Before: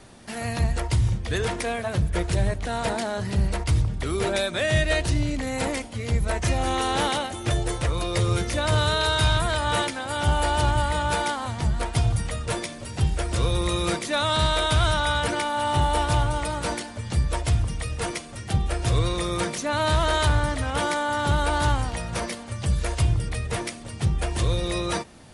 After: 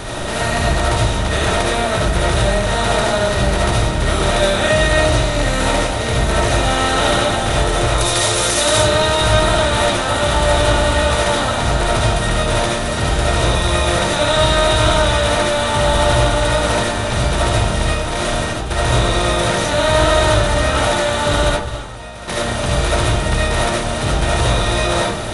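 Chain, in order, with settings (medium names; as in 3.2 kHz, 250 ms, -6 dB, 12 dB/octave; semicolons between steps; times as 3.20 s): spectral levelling over time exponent 0.4; 7.98–8.78 s: tone controls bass -9 dB, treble +10 dB; 17.94–18.71 s: compressor with a negative ratio -23 dBFS, ratio -1; 21.49–22.28 s: gate -13 dBFS, range -15 dB; reverberation RT60 0.45 s, pre-delay 30 ms, DRR -4 dB; trim -2.5 dB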